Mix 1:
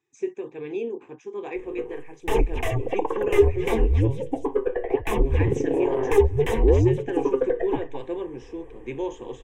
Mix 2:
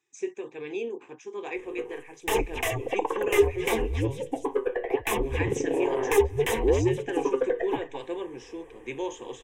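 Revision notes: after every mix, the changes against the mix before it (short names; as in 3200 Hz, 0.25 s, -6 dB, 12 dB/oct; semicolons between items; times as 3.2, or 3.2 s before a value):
master: add tilt +2.5 dB/oct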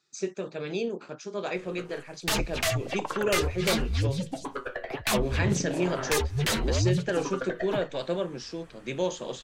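background: add bell 480 Hz -15 dB 1.4 oct; master: remove fixed phaser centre 910 Hz, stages 8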